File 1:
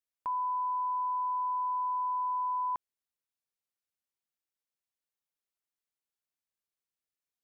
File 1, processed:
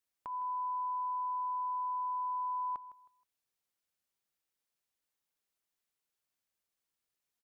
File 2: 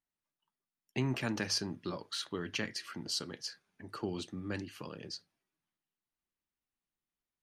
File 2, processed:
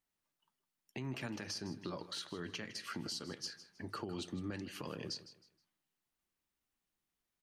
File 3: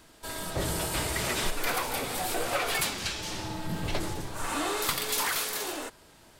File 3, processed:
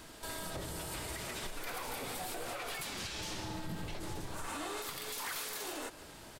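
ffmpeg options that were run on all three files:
-af "acompressor=threshold=0.00891:ratio=6,alimiter=level_in=3.76:limit=0.0631:level=0:latency=1:release=85,volume=0.266,aecho=1:1:158|316|474:0.178|0.0516|0.015,volume=1.58"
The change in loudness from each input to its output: -4.0 LU, -5.5 LU, -10.0 LU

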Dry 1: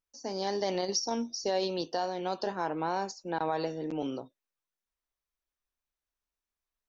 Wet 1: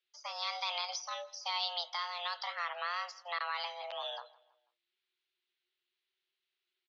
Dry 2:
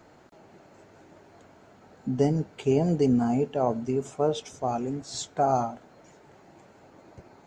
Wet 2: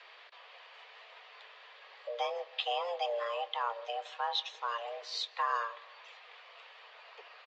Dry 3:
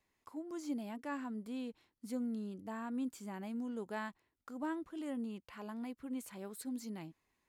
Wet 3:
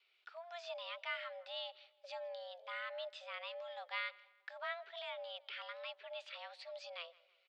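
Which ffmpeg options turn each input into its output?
-filter_complex "[0:a]tiltshelf=f=1500:g=-9,asplit=2[s0][s1];[s1]acompressor=threshold=0.00891:ratio=6,volume=1.41[s2];[s0][s2]amix=inputs=2:normalize=0,afreqshift=280,acrossover=split=710[s3][s4];[s4]crystalizer=i=5:c=0[s5];[s3][s5]amix=inputs=2:normalize=0,highpass=f=190:t=q:w=0.5412,highpass=f=190:t=q:w=1.307,lowpass=f=3600:t=q:w=0.5176,lowpass=f=3600:t=q:w=0.7071,lowpass=f=3600:t=q:w=1.932,afreqshift=67,asplit=2[s6][s7];[s7]adelay=163,lowpass=f=2900:p=1,volume=0.0891,asplit=2[s8][s9];[s9]adelay=163,lowpass=f=2900:p=1,volume=0.46,asplit=2[s10][s11];[s11]adelay=163,lowpass=f=2900:p=1,volume=0.46[s12];[s6][s8][s10][s12]amix=inputs=4:normalize=0,volume=0.447"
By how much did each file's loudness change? -4.5 LU, -9.0 LU, -3.0 LU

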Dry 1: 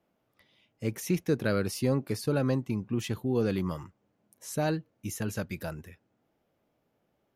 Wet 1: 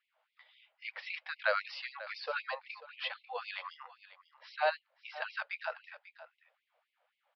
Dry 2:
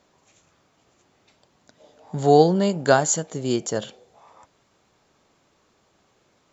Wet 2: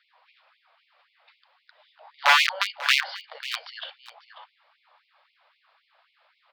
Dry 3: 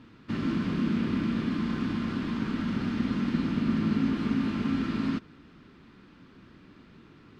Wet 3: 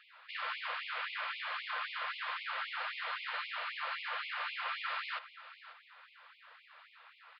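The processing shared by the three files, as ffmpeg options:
-filter_complex "[0:a]aresample=11025,aresample=44100,aeval=exprs='(mod(3.76*val(0)+1,2)-1)/3.76':c=same,acrossover=split=520 4300:gain=0.0794 1 0.0794[s0][s1][s2];[s0][s1][s2]amix=inputs=3:normalize=0,asplit=2[s3][s4];[s4]aecho=0:1:543:0.158[s5];[s3][s5]amix=inputs=2:normalize=0,afftfilt=real='re*gte(b*sr/1024,460*pow(2100/460,0.5+0.5*sin(2*PI*3.8*pts/sr)))':imag='im*gte(b*sr/1024,460*pow(2100/460,0.5+0.5*sin(2*PI*3.8*pts/sr)))':win_size=1024:overlap=0.75,volume=1.78"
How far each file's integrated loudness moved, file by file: -7.0 LU, -2.5 LU, -9.0 LU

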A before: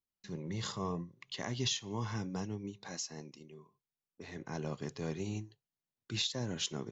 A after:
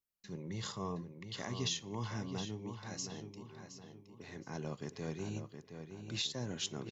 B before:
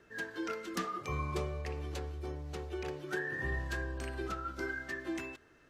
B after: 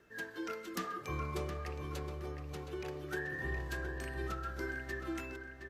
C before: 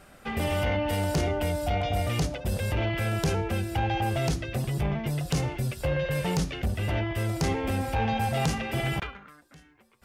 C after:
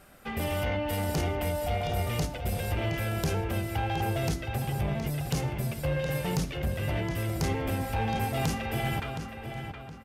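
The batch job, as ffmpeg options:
-filter_complex "[0:a]equalizer=f=13000:t=o:w=0.46:g=8.5,asplit=2[s0][s1];[s1]aeval=exprs='clip(val(0),-1,0.0596)':c=same,volume=0.355[s2];[s0][s2]amix=inputs=2:normalize=0,asplit=2[s3][s4];[s4]adelay=718,lowpass=f=4000:p=1,volume=0.422,asplit=2[s5][s6];[s6]adelay=718,lowpass=f=4000:p=1,volume=0.41,asplit=2[s7][s8];[s8]adelay=718,lowpass=f=4000:p=1,volume=0.41,asplit=2[s9][s10];[s10]adelay=718,lowpass=f=4000:p=1,volume=0.41,asplit=2[s11][s12];[s12]adelay=718,lowpass=f=4000:p=1,volume=0.41[s13];[s3][s5][s7][s9][s11][s13]amix=inputs=6:normalize=0,volume=0.531"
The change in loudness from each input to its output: -3.0 LU, -2.0 LU, -2.5 LU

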